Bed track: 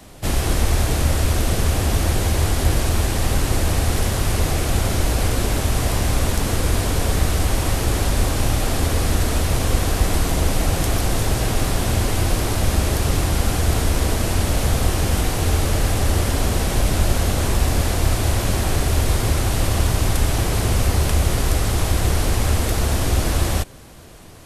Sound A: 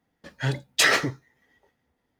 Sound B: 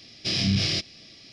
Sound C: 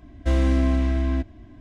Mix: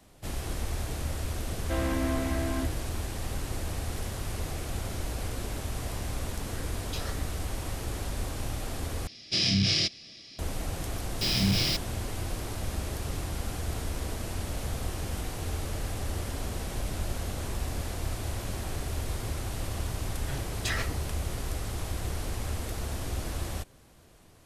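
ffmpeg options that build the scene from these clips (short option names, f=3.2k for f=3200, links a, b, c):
-filter_complex "[1:a]asplit=2[a][b];[2:a]asplit=2[c][d];[0:a]volume=-14.5dB[e];[3:a]asplit=2[f][g];[g]highpass=f=720:p=1,volume=22dB,asoftclip=type=tanh:threshold=-10dB[h];[f][h]amix=inputs=2:normalize=0,lowpass=f=1.8k:p=1,volume=-6dB[i];[a]asplit=2[j][k];[k]afreqshift=1.6[l];[j][l]amix=inputs=2:normalize=1[m];[c]highshelf=f=3.7k:g=5[n];[d]acrusher=bits=4:mix=0:aa=0.5[o];[e]asplit=2[p][q];[p]atrim=end=9.074[r];[n]atrim=end=1.32,asetpts=PTS-STARTPTS,volume=-2.5dB[s];[q]atrim=start=10.386[t];[i]atrim=end=1.6,asetpts=PTS-STARTPTS,volume=-11.5dB,afade=t=in:d=0.004:c=hsin,afade=t=out:st=1.596:d=0.004:c=hsin,adelay=1440[u];[m]atrim=end=2.19,asetpts=PTS-STARTPTS,volume=-17.5dB,afade=t=in:d=0.004:c=hsin,afade=t=out:st=2.186:d=0.004:c=hsin,adelay=6140[v];[o]atrim=end=1.32,asetpts=PTS-STARTPTS,volume=-2.5dB,afade=t=in:d=0.004:c=hsin,afade=t=out:st=1.316:d=0.004:c=hsin,adelay=10960[w];[b]atrim=end=2.19,asetpts=PTS-STARTPTS,volume=-13.5dB,afade=t=in:d=0.004:c=hsin,afade=t=out:st=2.186:d=0.004:c=hsin,adelay=19860[x];[r][s]acrossfade=d=0.004:c1=hsin:c2=hsin[y];[y][t]acrossfade=d=0.004:c1=hsin:c2=hsin[z];[z][u][v][w][x]amix=inputs=5:normalize=0"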